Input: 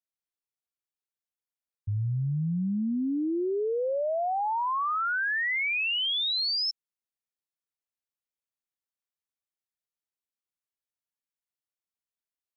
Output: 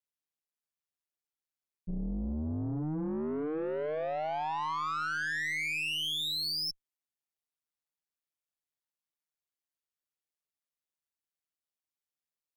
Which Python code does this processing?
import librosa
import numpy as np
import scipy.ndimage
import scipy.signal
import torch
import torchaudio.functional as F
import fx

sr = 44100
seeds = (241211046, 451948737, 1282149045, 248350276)

y = x * np.sin(2.0 * np.pi * 77.0 * np.arange(len(x)) / sr)
y = fx.cheby_harmonics(y, sr, harmonics=(4,), levels_db=(-19,), full_scale_db=-24.5)
y = 10.0 ** (-28.5 / 20.0) * np.tanh(y / 10.0 ** (-28.5 / 20.0))